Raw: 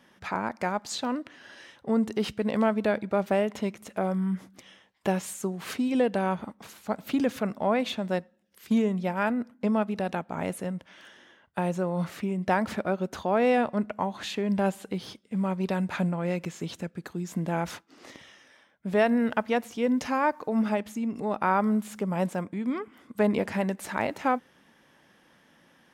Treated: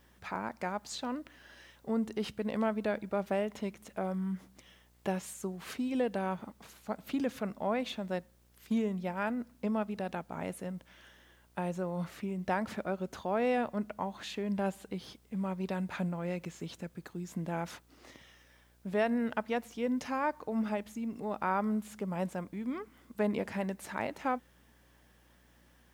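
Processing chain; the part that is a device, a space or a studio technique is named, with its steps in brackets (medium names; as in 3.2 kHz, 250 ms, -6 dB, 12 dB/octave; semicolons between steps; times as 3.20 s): video cassette with head-switching buzz (mains buzz 60 Hz, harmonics 29, -59 dBFS -7 dB/octave; white noise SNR 38 dB); trim -7 dB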